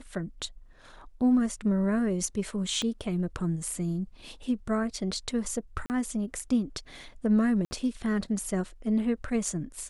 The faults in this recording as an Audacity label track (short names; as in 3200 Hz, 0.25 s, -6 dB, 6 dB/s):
2.820000	2.820000	pop -19 dBFS
5.860000	5.900000	gap 39 ms
7.650000	7.710000	gap 60 ms